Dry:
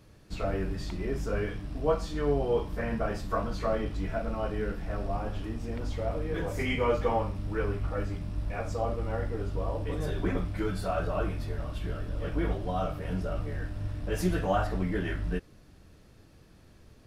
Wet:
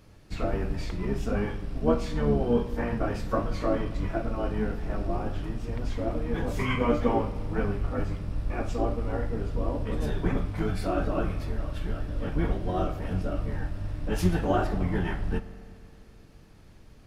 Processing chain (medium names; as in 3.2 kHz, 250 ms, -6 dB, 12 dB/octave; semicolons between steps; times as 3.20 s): spring tank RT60 2.7 s, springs 42 ms, chirp 30 ms, DRR 14.5 dB; harmony voices -12 st -1 dB